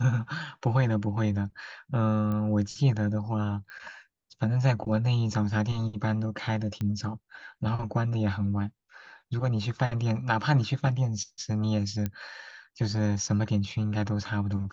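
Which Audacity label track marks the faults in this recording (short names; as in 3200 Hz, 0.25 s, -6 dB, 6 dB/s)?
2.320000	2.320000	pop -22 dBFS
3.700000	3.700000	pop -31 dBFS
6.810000	6.810000	pop -21 dBFS
12.060000	12.060000	pop -17 dBFS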